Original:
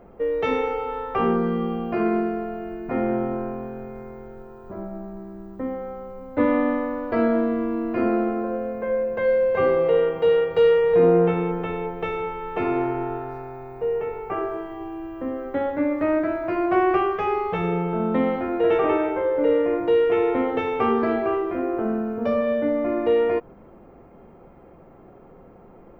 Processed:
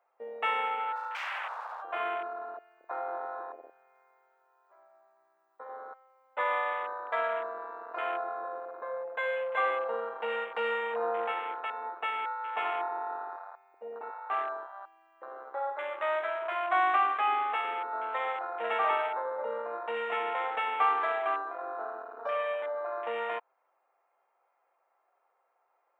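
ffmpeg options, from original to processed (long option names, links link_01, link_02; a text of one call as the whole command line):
ffmpeg -i in.wav -filter_complex "[0:a]asplit=3[link_01][link_02][link_03];[link_01]afade=type=out:start_time=0.95:duration=0.02[link_04];[link_02]aeval=exprs='0.0422*(abs(mod(val(0)/0.0422+3,4)-2)-1)':channel_layout=same,afade=type=in:start_time=0.95:duration=0.02,afade=type=out:start_time=1.81:duration=0.02[link_05];[link_03]afade=type=in:start_time=1.81:duration=0.02[link_06];[link_04][link_05][link_06]amix=inputs=3:normalize=0,highpass=frequency=770:width=0.5412,highpass=frequency=770:width=1.3066,bandreject=frequency=3100:width=20,afwtdn=0.02" out.wav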